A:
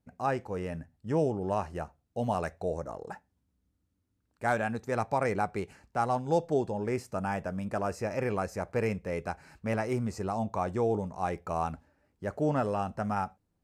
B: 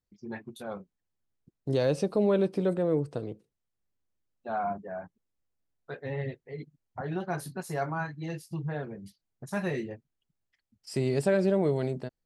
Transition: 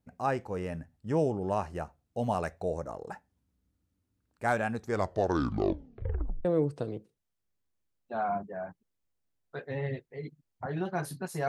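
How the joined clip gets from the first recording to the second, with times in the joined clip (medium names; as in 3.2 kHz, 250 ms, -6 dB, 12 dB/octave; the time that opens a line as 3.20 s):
A
4.77 s: tape stop 1.68 s
6.45 s: go over to B from 2.80 s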